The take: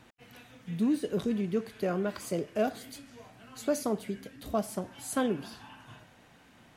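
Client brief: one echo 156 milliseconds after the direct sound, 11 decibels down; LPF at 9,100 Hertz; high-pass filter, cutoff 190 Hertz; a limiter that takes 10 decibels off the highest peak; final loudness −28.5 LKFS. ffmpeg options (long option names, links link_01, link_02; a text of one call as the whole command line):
ffmpeg -i in.wav -af "highpass=190,lowpass=9100,alimiter=level_in=2.5dB:limit=-24dB:level=0:latency=1,volume=-2.5dB,aecho=1:1:156:0.282,volume=9dB" out.wav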